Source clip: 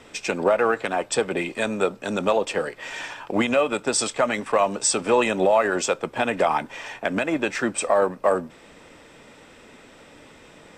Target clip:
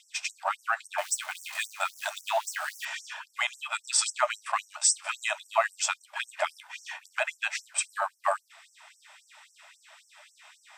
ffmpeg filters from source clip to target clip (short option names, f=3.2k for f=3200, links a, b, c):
-filter_complex "[0:a]asettb=1/sr,asplit=3[a][b][c];[a]atrim=end=0.984[d];[b]atrim=start=0.98:end=2.85,asetpts=PTS-STARTPTS,afade=t=in:d=0.004:c=qsin,afade=t=out:st=1.866:d=0.004:c=qsin,aeval=exprs='val(0)+0.5*0.0251*sgn(val(0))':c=same[e];[c]atrim=start=2.846[f];[d][e]acrossfade=d=0.004:c1=hsin:c2=qsin[g];[g][f]acrossfade=d=0.004:c1=qsin:c2=hsin,afftfilt=real='re*gte(b*sr/1024,560*pow(5500/560,0.5+0.5*sin(2*PI*3.7*pts/sr)))':imag='im*gte(b*sr/1024,560*pow(5500/560,0.5+0.5*sin(2*PI*3.7*pts/sr)))':win_size=1024:overlap=0.75,volume=-1dB"